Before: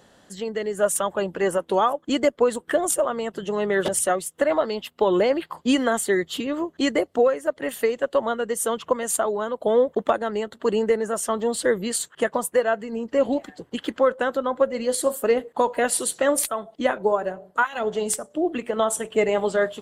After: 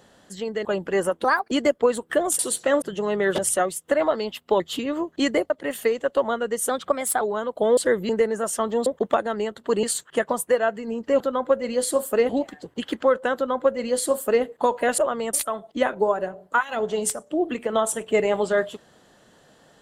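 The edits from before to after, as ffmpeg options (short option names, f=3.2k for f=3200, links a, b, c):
-filter_complex "[0:a]asplit=18[a][b][c][d][e][f][g][h][i][j][k][l][m][n][o][p][q][r];[a]atrim=end=0.652[s];[b]atrim=start=1.128:end=1.724[t];[c]atrim=start=1.72:end=2.09,asetpts=PTS-STARTPTS,asetrate=60417,aresample=44100,atrim=end_sample=11910,asetpts=PTS-STARTPTS[u];[d]atrim=start=2.086:end=2.972[v];[e]atrim=start=15.938:end=16.372[w];[f]atrim=start=3.318:end=5.102[x];[g]atrim=start=6.208:end=7.112[y];[h]atrim=start=7.478:end=8.674[z];[i]atrim=start=8.67:end=9.26,asetpts=PTS-STARTPTS,asetrate=49833,aresample=44100[aa];[j]atrim=start=9.256:end=9.822[ab];[k]atrim=start=11.558:end=11.882[ac];[l]atrim=start=10.788:end=11.562[ad];[m]atrim=start=9.818:end=10.792[ae];[n]atrim=start=11.878:end=13.252[af];[o]atrim=start=14.308:end=15.402[ag];[p]atrim=start=13.248:end=15.942[ah];[q]atrim=start=2.968:end=3.322[ai];[r]atrim=start=16.368[aj];[s][t]acrossfade=d=0.004:c1=hsin:c2=hsin[ak];[ak][u]acrossfade=d=0.004:c1=hsin:c2=hsin[al];[al][v]acrossfade=d=0.004:c1=hsin:c2=hsin[am];[am][w]acrossfade=d=0.004:c1=hsin:c2=hsin[an];[an][x]acrossfade=d=0.004:c1=hsin:c2=hsin[ao];[ao][y]acrossfade=d=0.004:c1=hsin:c2=hsin[ap];[ap][z]acrossfade=d=0.004:c1=hsin:c2=hsin[aq];[aq][aa]acrossfade=d=0.004:c1=hsin:c2=hsin[ar];[ar][ab]acrossfade=d=0.004:c1=hsin:c2=hsin[as];[as][ac]acrossfade=d=0.004:c1=hsin:c2=hsin[at];[at][ad]acrossfade=d=0.004:c1=hsin:c2=hsin[au];[au][ae]acrossfade=d=0.004:c1=hsin:c2=hsin[av];[av][af]acrossfade=d=0.004:c1=hsin:c2=hsin[aw];[aw][ag]acrossfade=d=0.004:c1=hsin:c2=hsin[ax];[ax][ah]acrossfade=d=0.004:c1=hsin:c2=hsin[ay];[ay][ai]acrossfade=d=0.004:c1=hsin:c2=hsin[az];[az][aj]acrossfade=d=0.004:c1=hsin:c2=hsin"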